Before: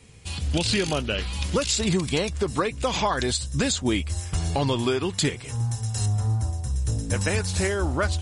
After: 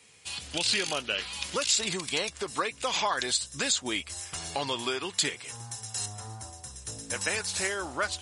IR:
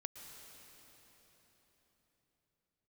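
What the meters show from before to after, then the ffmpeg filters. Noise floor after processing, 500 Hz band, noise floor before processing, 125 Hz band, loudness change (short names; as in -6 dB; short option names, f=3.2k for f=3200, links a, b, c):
-50 dBFS, -8.0 dB, -38 dBFS, -20.0 dB, -4.5 dB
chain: -af "highpass=f=1.1k:p=1"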